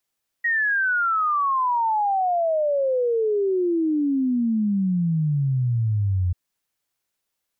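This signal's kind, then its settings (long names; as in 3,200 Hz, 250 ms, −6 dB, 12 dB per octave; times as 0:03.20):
exponential sine sweep 1,900 Hz → 87 Hz 5.89 s −18.5 dBFS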